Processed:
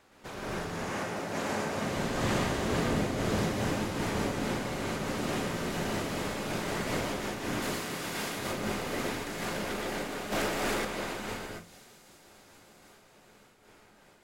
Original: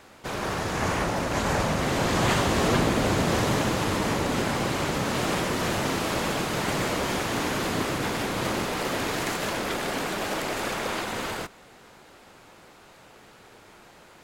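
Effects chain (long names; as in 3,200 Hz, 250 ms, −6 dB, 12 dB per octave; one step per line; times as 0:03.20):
0:00.72–0:01.85: Bessel high-pass filter 170 Hz, order 2
0:07.62–0:08.39: spectral tilt +2 dB per octave
delay with a high-pass on its return 711 ms, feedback 60%, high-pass 4,800 Hz, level −12 dB
convolution reverb, pre-delay 115 ms, DRR −1 dB
0:10.32–0:10.85: leveller curve on the samples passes 2
amplitude modulation by smooth noise, depth 65%
level −8 dB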